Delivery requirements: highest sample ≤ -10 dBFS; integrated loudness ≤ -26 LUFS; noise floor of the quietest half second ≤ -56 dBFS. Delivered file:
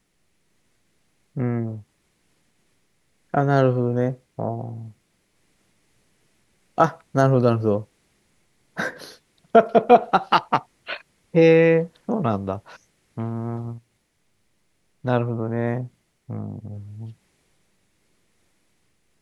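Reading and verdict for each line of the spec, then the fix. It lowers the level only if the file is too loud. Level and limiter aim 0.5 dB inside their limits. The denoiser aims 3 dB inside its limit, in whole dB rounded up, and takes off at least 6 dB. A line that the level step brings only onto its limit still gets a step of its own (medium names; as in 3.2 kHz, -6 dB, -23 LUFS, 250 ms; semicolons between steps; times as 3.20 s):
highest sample -2.5 dBFS: fail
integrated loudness -22.0 LUFS: fail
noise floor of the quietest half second -68 dBFS: pass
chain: trim -4.5 dB; peak limiter -10.5 dBFS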